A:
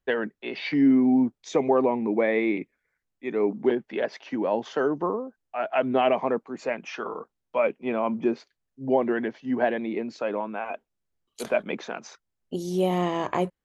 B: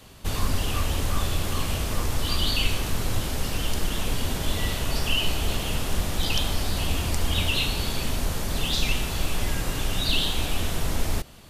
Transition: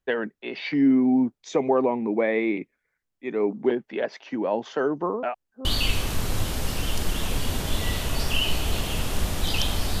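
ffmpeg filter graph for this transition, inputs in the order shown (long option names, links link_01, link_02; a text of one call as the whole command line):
ffmpeg -i cue0.wav -i cue1.wav -filter_complex "[0:a]apad=whole_dur=10,atrim=end=10,asplit=2[link_01][link_02];[link_01]atrim=end=5.232[link_03];[link_02]atrim=start=5.228:end=5.652,asetpts=PTS-STARTPTS,areverse[link_04];[1:a]atrim=start=2.408:end=6.76[link_05];[link_03][link_04]acrossfade=duration=0.004:curve1=hsin:curve2=hsin[link_06];[link_06][link_05]acrossfade=duration=0.004:curve1=hsin:curve2=hsin" out.wav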